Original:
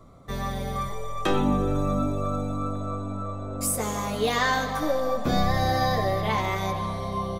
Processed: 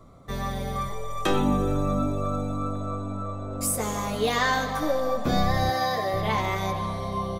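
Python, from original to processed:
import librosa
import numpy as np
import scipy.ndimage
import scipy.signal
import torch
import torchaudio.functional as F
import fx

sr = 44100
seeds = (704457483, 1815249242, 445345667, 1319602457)

y = fx.high_shelf(x, sr, hz=6000.0, db=6.0, at=(1.1, 1.75))
y = fx.dmg_noise_colour(y, sr, seeds[0], colour='brown', level_db=-52.0, at=(3.5, 4.18), fade=0.02)
y = fx.highpass(y, sr, hz=380.0, slope=6, at=(5.7, 6.14))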